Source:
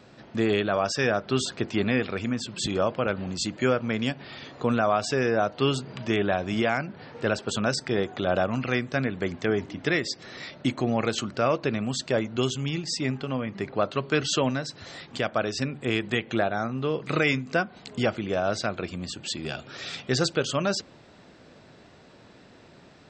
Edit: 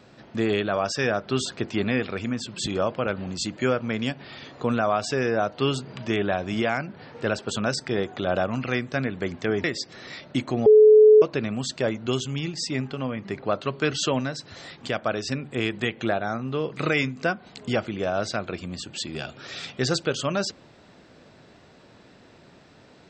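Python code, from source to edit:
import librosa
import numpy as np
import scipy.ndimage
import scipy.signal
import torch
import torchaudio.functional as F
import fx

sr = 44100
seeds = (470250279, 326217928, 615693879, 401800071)

y = fx.edit(x, sr, fx.cut(start_s=9.64, length_s=0.3),
    fx.bleep(start_s=10.96, length_s=0.56, hz=429.0, db=-9.0), tone=tone)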